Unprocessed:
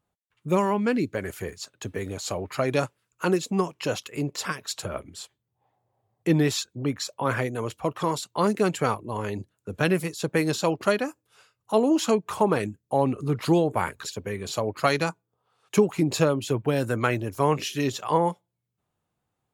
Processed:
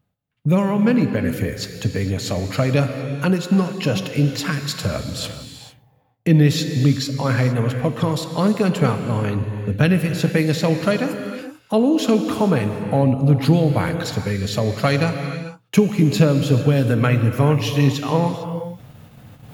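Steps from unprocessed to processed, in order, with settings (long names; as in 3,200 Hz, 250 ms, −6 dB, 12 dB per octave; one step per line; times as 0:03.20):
in parallel at +2.5 dB: downward compressor 5 to 1, threshold −31 dBFS, peak gain reduction 15.5 dB
on the sum: octave-band graphic EQ 125/250/1,000/8,000 Hz +7/+3/−7/−9 dB
reversed playback
upward compression, threshold −24 dBFS
reversed playback
noise gate −45 dBFS, range −14 dB
parametric band 360 Hz −10 dB 0.32 octaves
reverb whose tail is shaped and stops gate 480 ms flat, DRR 6.5 dB
level +2.5 dB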